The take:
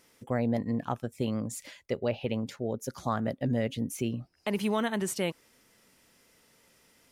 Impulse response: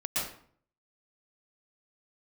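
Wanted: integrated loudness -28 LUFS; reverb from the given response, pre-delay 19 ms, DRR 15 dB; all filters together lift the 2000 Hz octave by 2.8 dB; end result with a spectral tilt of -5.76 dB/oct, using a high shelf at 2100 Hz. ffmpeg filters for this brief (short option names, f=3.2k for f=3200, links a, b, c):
-filter_complex "[0:a]equalizer=f=2k:t=o:g=5.5,highshelf=f=2.1k:g=-4,asplit=2[a][b];[1:a]atrim=start_sample=2205,adelay=19[c];[b][c]afir=irnorm=-1:irlink=0,volume=-22dB[d];[a][d]amix=inputs=2:normalize=0,volume=4dB"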